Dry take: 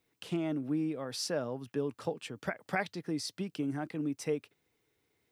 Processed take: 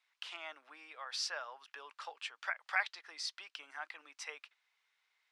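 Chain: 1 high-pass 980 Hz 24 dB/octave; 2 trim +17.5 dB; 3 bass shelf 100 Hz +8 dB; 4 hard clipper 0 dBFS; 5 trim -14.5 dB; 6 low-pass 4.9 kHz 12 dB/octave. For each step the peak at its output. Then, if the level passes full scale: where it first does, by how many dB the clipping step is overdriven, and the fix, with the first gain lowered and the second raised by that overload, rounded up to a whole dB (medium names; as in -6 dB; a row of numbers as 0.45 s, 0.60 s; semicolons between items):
-20.5 dBFS, -3.0 dBFS, -3.0 dBFS, -3.0 dBFS, -17.5 dBFS, -17.5 dBFS; nothing clips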